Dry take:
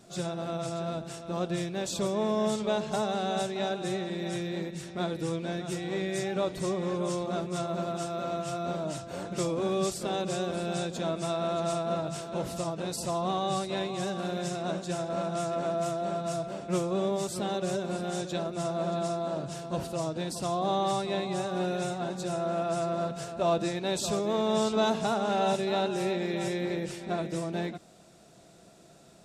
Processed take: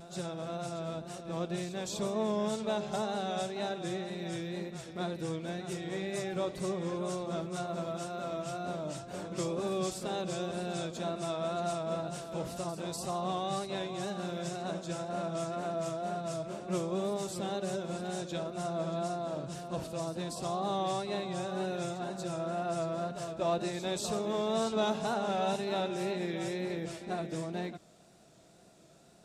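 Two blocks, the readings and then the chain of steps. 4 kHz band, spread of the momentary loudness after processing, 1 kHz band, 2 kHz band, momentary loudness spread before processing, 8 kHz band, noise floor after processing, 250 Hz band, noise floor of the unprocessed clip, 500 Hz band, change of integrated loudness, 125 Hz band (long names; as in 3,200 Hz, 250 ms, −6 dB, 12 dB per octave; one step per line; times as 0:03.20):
−4.0 dB, 6 LU, −4.0 dB, −4.0 dB, 6 LU, −4.0 dB, −57 dBFS, −4.5 dB, −54 dBFS, −4.5 dB, −4.5 dB, −4.0 dB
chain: echo ahead of the sound 242 ms −12.5 dB
pitch vibrato 2 Hz 57 cents
level −4.5 dB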